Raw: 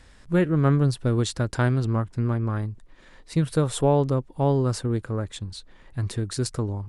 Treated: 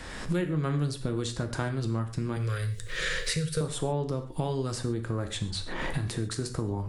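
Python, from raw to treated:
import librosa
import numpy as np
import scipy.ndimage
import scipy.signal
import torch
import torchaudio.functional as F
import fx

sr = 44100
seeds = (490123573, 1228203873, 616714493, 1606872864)

y = fx.recorder_agc(x, sr, target_db=-16.0, rise_db_per_s=51.0, max_gain_db=30)
y = fx.curve_eq(y, sr, hz=(150.0, 260.0, 470.0, 820.0, 1400.0, 5500.0), db=(0, -26, 4, -21, 1, 9), at=(2.36, 3.61))
y = fx.rev_gated(y, sr, seeds[0], gate_ms=160, shape='falling', drr_db=6.0)
y = fx.band_squash(y, sr, depth_pct=70)
y = F.gain(torch.from_numpy(y), -8.5).numpy()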